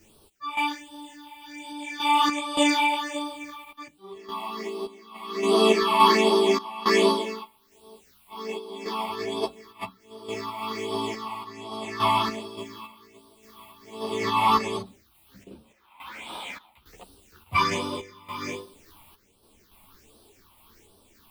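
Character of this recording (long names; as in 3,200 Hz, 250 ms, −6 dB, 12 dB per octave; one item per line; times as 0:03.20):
a quantiser's noise floor 10 bits, dither triangular
phaser sweep stages 6, 1.3 Hz, lowest notch 420–2,000 Hz
sample-and-hold tremolo, depth 90%
a shimmering, thickened sound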